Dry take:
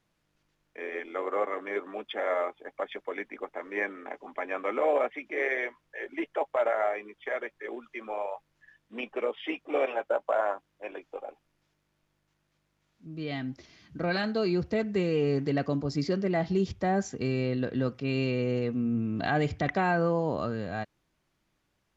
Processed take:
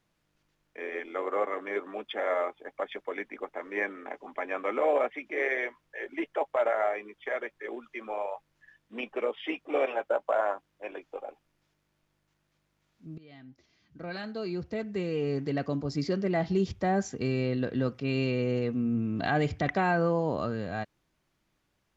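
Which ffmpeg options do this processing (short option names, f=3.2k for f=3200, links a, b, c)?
-filter_complex "[0:a]asplit=2[a][b];[a]atrim=end=13.18,asetpts=PTS-STARTPTS,afade=t=out:st=13.176:d=0.004:c=hsin:silence=0.0944061[c];[b]atrim=start=13.18,asetpts=PTS-STARTPTS,afade=t=in:d=3.28:silence=0.0944061[d];[c][d]concat=n=2:v=0:a=1"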